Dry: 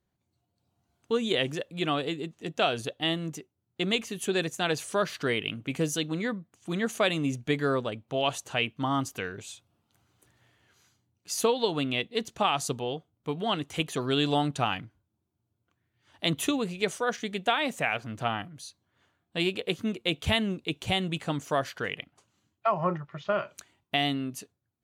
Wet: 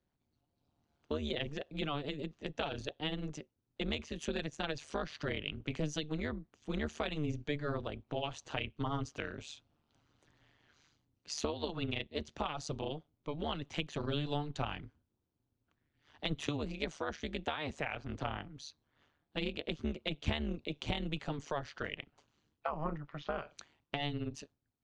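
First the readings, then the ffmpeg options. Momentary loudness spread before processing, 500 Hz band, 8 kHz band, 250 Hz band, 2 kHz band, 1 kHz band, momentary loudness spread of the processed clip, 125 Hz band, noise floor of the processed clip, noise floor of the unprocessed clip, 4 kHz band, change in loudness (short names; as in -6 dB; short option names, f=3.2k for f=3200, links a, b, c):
10 LU, -10.0 dB, -12.5 dB, -8.5 dB, -10.0 dB, -11.0 dB, 7 LU, -5.5 dB, -83 dBFS, -80 dBFS, -10.5 dB, -9.5 dB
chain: -filter_complex "[0:a]tremolo=f=150:d=0.974,lowpass=f=5.9k:w=0.5412,lowpass=f=5.9k:w=1.3066,acrossover=split=150[a][b];[b]acompressor=threshold=-37dB:ratio=3[c];[a][c]amix=inputs=2:normalize=0,volume=1dB"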